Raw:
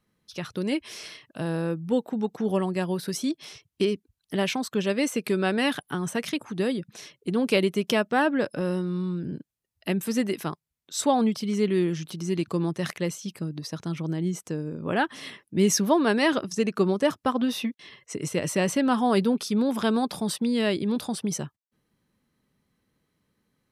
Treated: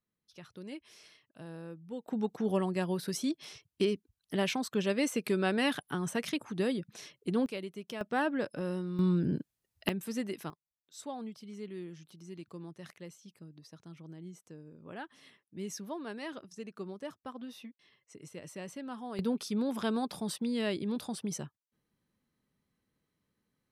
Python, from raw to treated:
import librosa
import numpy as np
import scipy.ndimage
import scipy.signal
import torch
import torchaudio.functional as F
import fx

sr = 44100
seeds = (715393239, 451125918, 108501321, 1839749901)

y = fx.gain(x, sr, db=fx.steps((0.0, -17.0), (2.08, -5.0), (7.46, -17.5), (8.01, -8.0), (8.99, 2.0), (9.89, -10.0), (10.5, -19.0), (19.19, -8.0)))